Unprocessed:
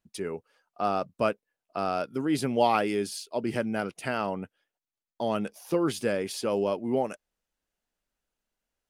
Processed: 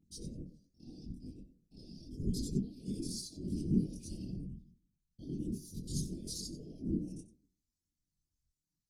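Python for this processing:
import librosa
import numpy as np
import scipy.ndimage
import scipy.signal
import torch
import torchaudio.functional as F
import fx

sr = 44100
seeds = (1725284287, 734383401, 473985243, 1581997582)

y = fx.local_reverse(x, sr, ms=57.0)
y = fx.graphic_eq_15(y, sr, hz=(160, 630, 4000), db=(9, 8, 10))
y = fx.over_compress(y, sr, threshold_db=-27.0, ratio=-1.0)
y = scipy.signal.sosfilt(scipy.signal.cheby1(3, 1.0, [210.0, 5800.0], 'bandstop', fs=sr, output='sos'), y)
y = fx.high_shelf(y, sr, hz=8600.0, db=-6.5)
y = fx.stiff_resonator(y, sr, f0_hz=72.0, decay_s=0.67, stiffness=0.008)
y = y + 10.0 ** (-15.5 / 20.0) * np.pad(y, (int(92 * sr / 1000.0), 0))[:len(y)]
y = fx.whisperise(y, sr, seeds[0])
y = fx.chorus_voices(y, sr, voices=6, hz=0.81, base_ms=24, depth_ms=3.5, mix_pct=60)
y = y * librosa.db_to_amplitude(9.5)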